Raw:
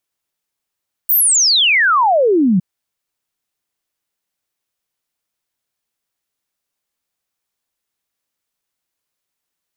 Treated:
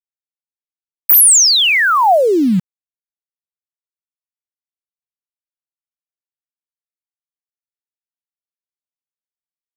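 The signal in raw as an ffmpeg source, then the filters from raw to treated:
-f lavfi -i "aevalsrc='0.335*clip(min(t,1.51-t)/0.01,0,1)*sin(2*PI*16000*1.51/log(170/16000)*(exp(log(170/16000)*t/1.51)-1))':duration=1.51:sample_rate=44100"
-filter_complex "[0:a]adynamicequalizer=threshold=0.0355:dfrequency=730:dqfactor=3.2:tfrequency=730:tqfactor=3.2:attack=5:release=100:ratio=0.375:range=2:mode=boostabove:tftype=bell,acrossover=split=6600[link_01][link_02];[link_02]acontrast=75[link_03];[link_01][link_03]amix=inputs=2:normalize=0,aeval=exprs='val(0)*gte(abs(val(0)),0.0501)':channel_layout=same"

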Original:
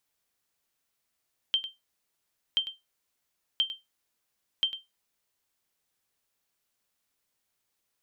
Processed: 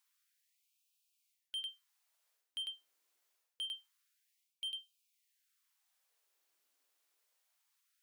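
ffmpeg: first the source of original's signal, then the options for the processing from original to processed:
-f lavfi -i "aevalsrc='0.141*(sin(2*PI*3140*mod(t,1.03))*exp(-6.91*mod(t,1.03)/0.19)+0.224*sin(2*PI*3140*max(mod(t,1.03)-0.1,0))*exp(-6.91*max(mod(t,1.03)-0.1,0)/0.19))':duration=4.12:sample_rate=44100"
-af "areverse,acompressor=threshold=-35dB:ratio=12,areverse,asoftclip=type=tanh:threshold=-36dB,afftfilt=real='re*gte(b*sr/1024,250*pow(2400/250,0.5+0.5*sin(2*PI*0.26*pts/sr)))':imag='im*gte(b*sr/1024,250*pow(2400/250,0.5+0.5*sin(2*PI*0.26*pts/sr)))':win_size=1024:overlap=0.75"

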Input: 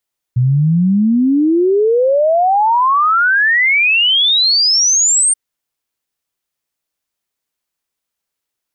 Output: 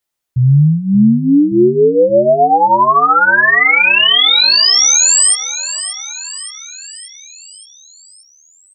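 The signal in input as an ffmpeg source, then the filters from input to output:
-f lavfi -i "aevalsrc='0.355*clip(min(t,4.98-t)/0.01,0,1)*sin(2*PI*120*4.98/log(8900/120)*(exp(log(8900/120)*t/4.98)-1))':duration=4.98:sample_rate=44100"
-filter_complex "[0:a]asplit=2[link_01][link_02];[link_02]adelay=14,volume=-3dB[link_03];[link_01][link_03]amix=inputs=2:normalize=0,asplit=2[link_04][link_05];[link_05]aecho=0:1:576|1152|1728|2304|2880|3456:0.251|0.138|0.076|0.0418|0.023|0.0126[link_06];[link_04][link_06]amix=inputs=2:normalize=0"

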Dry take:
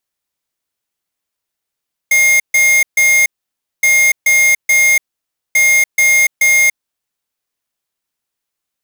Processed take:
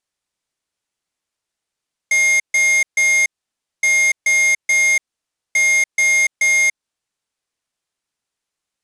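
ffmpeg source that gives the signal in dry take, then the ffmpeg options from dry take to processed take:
-f lavfi -i "aevalsrc='0.316*(2*lt(mod(2130*t,1),0.5)-1)*clip(min(mod(mod(t,1.72),0.43),0.29-mod(mod(t,1.72),0.43))/0.005,0,1)*lt(mod(t,1.72),1.29)':duration=5.16:sample_rate=44100"
-af "alimiter=limit=-14dB:level=0:latency=1:release=157,lowpass=frequency=9900:width=0.5412,lowpass=frequency=9900:width=1.3066"

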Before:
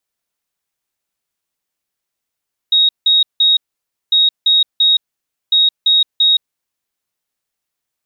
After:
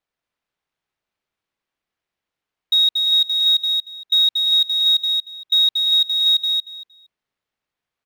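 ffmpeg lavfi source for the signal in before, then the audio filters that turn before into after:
-f lavfi -i "aevalsrc='0.398*sin(2*PI*3770*t)*clip(min(mod(mod(t,1.4),0.34),0.17-mod(mod(t,1.4),0.34))/0.005,0,1)*lt(mod(t,1.4),1.02)':duration=4.2:sample_rate=44100"
-filter_complex "[0:a]lowpass=3600,asplit=2[link_01][link_02];[link_02]aecho=0:1:232|464|696:0.596|0.101|0.0172[link_03];[link_01][link_03]amix=inputs=2:normalize=0" -ar 44100 -c:a adpcm_ima_wav

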